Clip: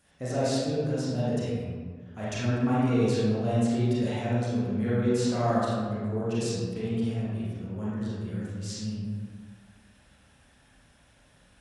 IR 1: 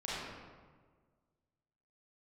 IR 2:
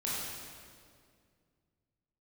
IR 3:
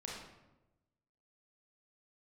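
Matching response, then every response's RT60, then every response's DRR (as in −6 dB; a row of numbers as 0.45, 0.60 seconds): 1; 1.6, 2.2, 1.0 seconds; −9.0, −7.5, −4.0 decibels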